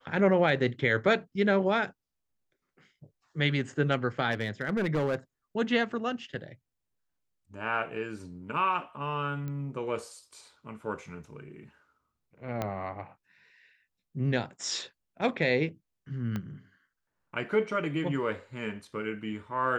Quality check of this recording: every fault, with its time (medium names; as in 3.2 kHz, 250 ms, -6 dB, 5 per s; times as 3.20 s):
4.31–5.15 s: clipped -23.5 dBFS
9.48 s: pop -26 dBFS
12.62 s: pop -17 dBFS
16.36 s: pop -21 dBFS